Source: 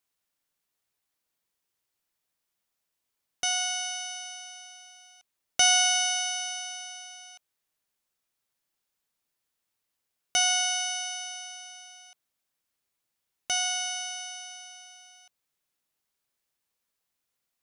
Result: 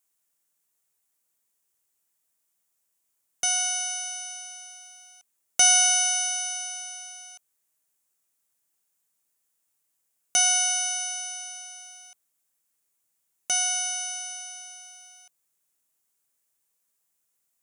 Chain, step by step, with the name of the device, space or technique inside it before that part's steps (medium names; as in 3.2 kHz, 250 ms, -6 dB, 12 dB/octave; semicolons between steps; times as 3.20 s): budget condenser microphone (high-pass 81 Hz; resonant high shelf 5.8 kHz +7.5 dB, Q 1.5)